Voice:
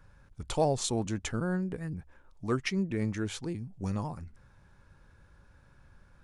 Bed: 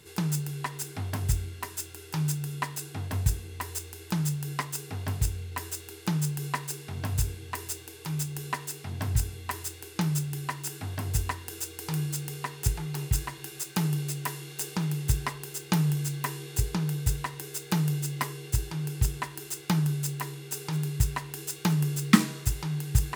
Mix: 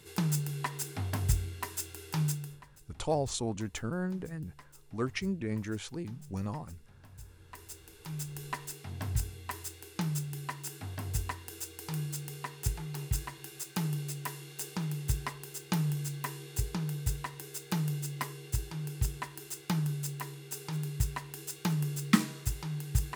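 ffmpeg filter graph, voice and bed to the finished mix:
-filter_complex "[0:a]adelay=2500,volume=0.708[s0];[1:a]volume=6.68,afade=t=out:st=2.22:d=0.4:silence=0.0794328,afade=t=in:st=7.2:d=1.25:silence=0.125893[s1];[s0][s1]amix=inputs=2:normalize=0"

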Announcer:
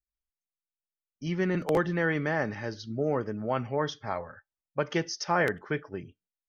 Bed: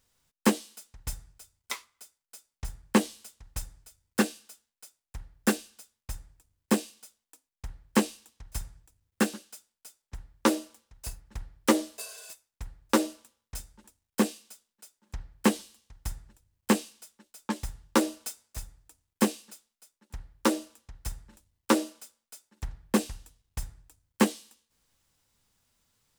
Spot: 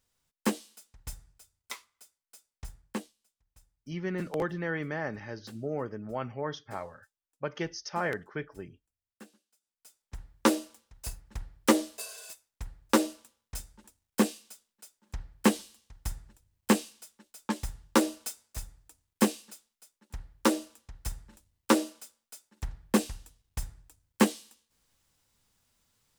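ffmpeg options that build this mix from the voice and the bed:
-filter_complex "[0:a]adelay=2650,volume=0.531[s0];[1:a]volume=10,afade=t=out:st=2.62:d=0.51:silence=0.1,afade=t=in:st=9.6:d=0.62:silence=0.0530884[s1];[s0][s1]amix=inputs=2:normalize=0"

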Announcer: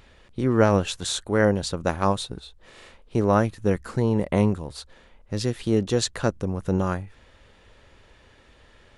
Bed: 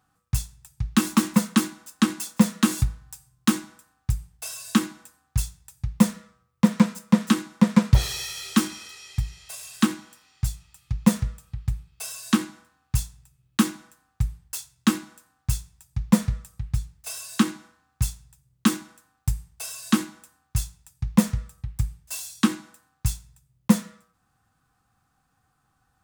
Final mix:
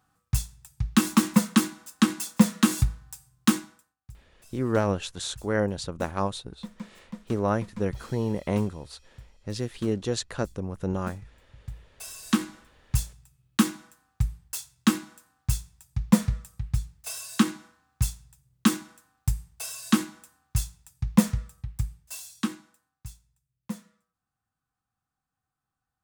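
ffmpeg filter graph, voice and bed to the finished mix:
-filter_complex "[0:a]adelay=4150,volume=0.531[s0];[1:a]volume=10.6,afade=t=out:st=3.52:d=0.44:silence=0.0841395,afade=t=in:st=11.49:d=1.06:silence=0.0891251,afade=t=out:st=21.26:d=1.78:silence=0.158489[s1];[s0][s1]amix=inputs=2:normalize=0"

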